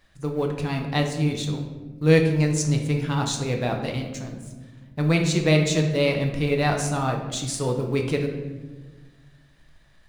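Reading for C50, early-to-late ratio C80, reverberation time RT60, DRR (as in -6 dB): 6.0 dB, 8.5 dB, 1.3 s, 2.0 dB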